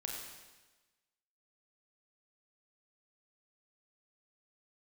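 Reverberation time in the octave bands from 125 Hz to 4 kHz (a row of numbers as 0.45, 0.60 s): 1.1, 1.2, 1.2, 1.2, 1.2, 1.2 s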